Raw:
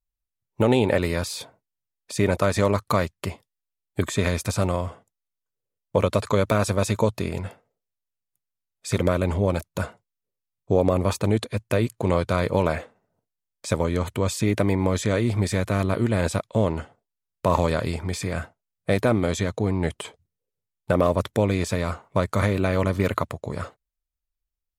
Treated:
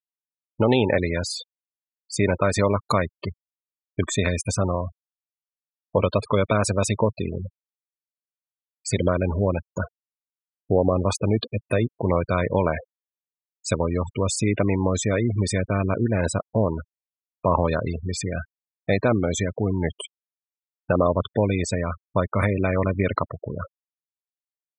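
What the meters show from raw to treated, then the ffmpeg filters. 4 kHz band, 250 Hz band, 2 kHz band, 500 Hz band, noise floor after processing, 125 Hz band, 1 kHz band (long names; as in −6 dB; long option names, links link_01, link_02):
0.0 dB, 0.0 dB, +0.5 dB, 0.0 dB, below −85 dBFS, 0.0 dB, +0.5 dB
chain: -af "highshelf=frequency=2600:gain=7,afftfilt=real='re*gte(hypot(re,im),0.0708)':imag='im*gte(hypot(re,im),0.0708)':win_size=1024:overlap=0.75,aresample=22050,aresample=44100"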